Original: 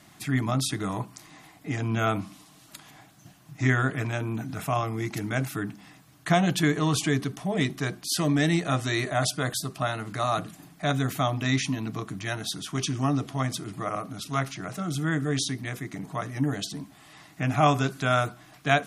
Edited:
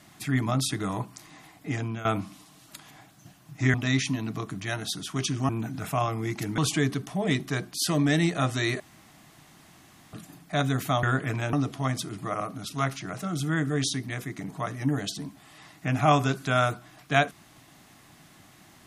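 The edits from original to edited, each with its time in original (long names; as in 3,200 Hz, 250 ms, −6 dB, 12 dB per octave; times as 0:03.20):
0:01.76–0:02.05: fade out, to −16.5 dB
0:03.74–0:04.24: swap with 0:11.33–0:13.08
0:05.33–0:06.88: remove
0:09.10–0:10.43: fill with room tone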